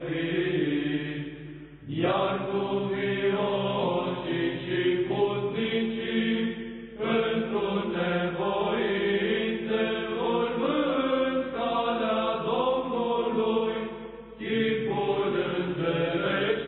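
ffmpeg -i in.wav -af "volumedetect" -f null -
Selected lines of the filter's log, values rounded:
mean_volume: -27.4 dB
max_volume: -13.8 dB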